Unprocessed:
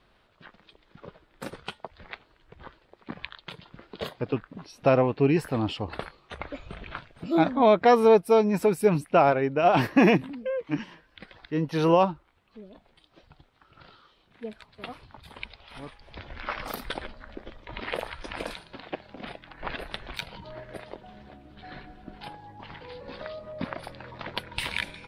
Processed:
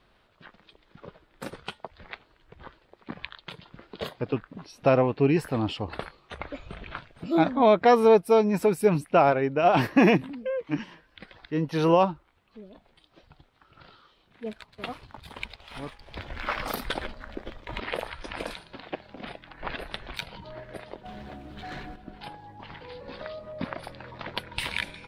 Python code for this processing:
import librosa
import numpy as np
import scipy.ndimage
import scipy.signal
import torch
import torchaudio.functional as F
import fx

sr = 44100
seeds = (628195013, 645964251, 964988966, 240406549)

y = fx.leveller(x, sr, passes=1, at=(14.46, 17.8))
y = fx.leveller(y, sr, passes=2, at=(21.05, 21.96))